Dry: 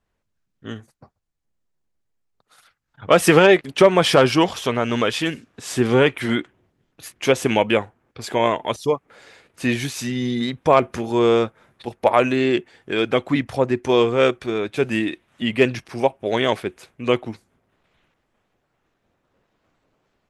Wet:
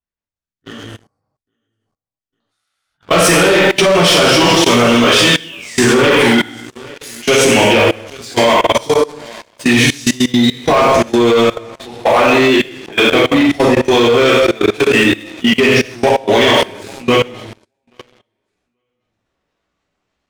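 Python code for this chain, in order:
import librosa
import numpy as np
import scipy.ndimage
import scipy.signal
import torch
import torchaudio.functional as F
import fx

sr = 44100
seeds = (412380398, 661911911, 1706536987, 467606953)

p1 = 10.0 ** (-15.5 / 20.0) * np.tanh(x / 10.0 ** (-15.5 / 20.0))
p2 = x + F.gain(torch.from_numpy(p1), -3.0).numpy()
p3 = fx.high_shelf(p2, sr, hz=7500.0, db=-6.0)
p4 = p3 + fx.echo_feedback(p3, sr, ms=831, feedback_pct=28, wet_db=-20, dry=0)
p5 = fx.spec_paint(p4, sr, seeds[0], shape='fall', start_s=5.27, length_s=1.07, low_hz=730.0, high_hz=3800.0, level_db=-30.0)
p6 = scipy.signal.sosfilt(scipy.signal.butter(2, 10000.0, 'lowpass', fs=sr, output='sos'), p5)
p7 = fx.high_shelf(p6, sr, hz=3100.0, db=11.0)
p8 = fx.rev_gated(p7, sr, seeds[1], gate_ms=330, shape='falling', drr_db=-8.0)
p9 = fx.leveller(p8, sr, passes=3)
p10 = fx.level_steps(p9, sr, step_db=21)
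y = F.gain(torch.from_numpy(p10), -9.5).numpy()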